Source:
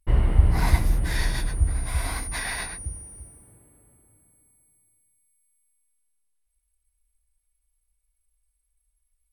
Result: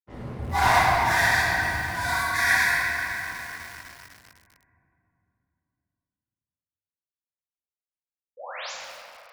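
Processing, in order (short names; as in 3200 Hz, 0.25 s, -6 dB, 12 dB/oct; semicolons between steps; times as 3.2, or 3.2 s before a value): median filter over 15 samples; de-hum 351.9 Hz, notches 2; spectral noise reduction 25 dB; low-pass opened by the level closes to 1300 Hz, open at -39.5 dBFS; HPF 91 Hz 24 dB/oct; sample leveller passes 3; painted sound rise, 8.37–8.72, 470–7700 Hz -44 dBFS; shoebox room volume 160 m³, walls hard, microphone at 1.3 m; lo-fi delay 0.252 s, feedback 80%, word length 6-bit, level -11.5 dB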